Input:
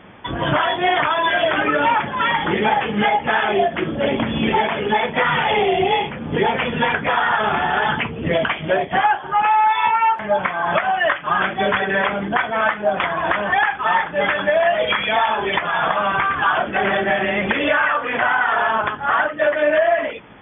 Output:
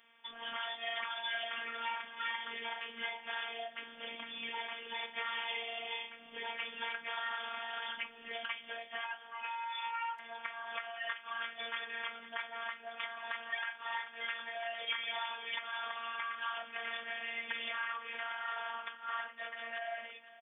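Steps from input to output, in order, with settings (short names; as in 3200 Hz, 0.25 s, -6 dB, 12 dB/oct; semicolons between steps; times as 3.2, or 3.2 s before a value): differentiator; on a send: echo 0.508 s -17 dB; on the sum: robotiser 231 Hz; gain -4.5 dB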